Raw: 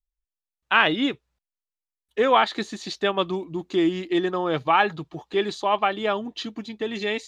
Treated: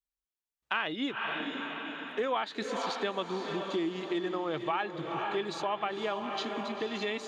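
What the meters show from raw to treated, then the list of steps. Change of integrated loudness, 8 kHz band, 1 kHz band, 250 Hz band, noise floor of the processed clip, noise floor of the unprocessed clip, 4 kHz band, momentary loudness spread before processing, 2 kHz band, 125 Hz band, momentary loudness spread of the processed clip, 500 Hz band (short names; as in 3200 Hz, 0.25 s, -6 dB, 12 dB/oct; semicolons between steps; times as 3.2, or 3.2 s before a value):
-10.0 dB, -5.5 dB, -10.0 dB, -9.0 dB, under -85 dBFS, under -85 dBFS, -8.5 dB, 13 LU, -9.5 dB, -9.5 dB, 3 LU, -8.5 dB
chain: HPF 130 Hz 6 dB/oct; on a send: diffused feedback echo 0.495 s, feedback 50%, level -9 dB; on the sum: compressor 3:1, threshold -28 dBFS, peak gain reduction 12 dB; gain -3 dB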